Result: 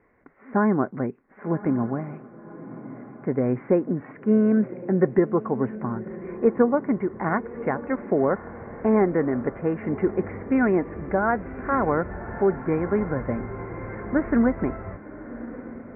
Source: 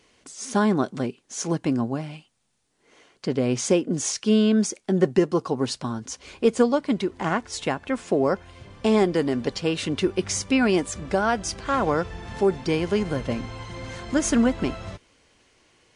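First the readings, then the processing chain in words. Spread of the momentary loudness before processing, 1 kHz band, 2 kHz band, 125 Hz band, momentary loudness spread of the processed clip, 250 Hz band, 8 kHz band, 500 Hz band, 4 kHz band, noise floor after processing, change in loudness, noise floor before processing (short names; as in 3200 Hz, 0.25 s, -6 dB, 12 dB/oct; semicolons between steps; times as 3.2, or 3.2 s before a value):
11 LU, 0.0 dB, -1.0 dB, 0.0 dB, 16 LU, 0.0 dB, under -40 dB, 0.0 dB, under -35 dB, -47 dBFS, -0.5 dB, -63 dBFS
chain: steep low-pass 2100 Hz 72 dB/oct; diffused feedback echo 1.113 s, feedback 48%, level -14.5 dB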